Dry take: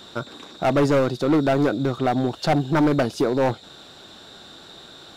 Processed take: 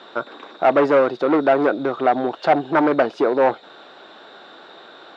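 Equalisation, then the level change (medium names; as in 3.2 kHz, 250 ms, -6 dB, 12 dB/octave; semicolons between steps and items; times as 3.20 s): band-pass 420–2100 Hz; +6.5 dB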